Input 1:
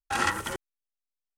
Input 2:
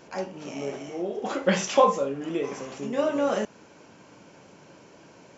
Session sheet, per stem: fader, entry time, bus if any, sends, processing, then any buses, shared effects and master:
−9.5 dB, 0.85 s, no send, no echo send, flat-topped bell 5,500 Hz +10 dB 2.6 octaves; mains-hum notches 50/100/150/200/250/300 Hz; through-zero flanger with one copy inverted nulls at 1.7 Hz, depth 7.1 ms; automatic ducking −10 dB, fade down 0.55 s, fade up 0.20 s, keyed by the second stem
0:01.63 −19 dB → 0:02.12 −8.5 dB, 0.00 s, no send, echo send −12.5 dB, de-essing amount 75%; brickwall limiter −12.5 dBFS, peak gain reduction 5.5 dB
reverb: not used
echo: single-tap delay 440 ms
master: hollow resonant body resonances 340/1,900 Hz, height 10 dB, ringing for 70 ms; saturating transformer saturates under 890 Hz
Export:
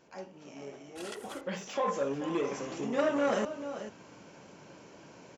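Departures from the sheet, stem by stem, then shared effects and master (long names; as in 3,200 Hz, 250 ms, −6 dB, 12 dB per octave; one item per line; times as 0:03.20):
stem 2 −19.0 dB → −12.0 dB
master: missing hollow resonant body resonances 340/1,900 Hz, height 10 dB, ringing for 70 ms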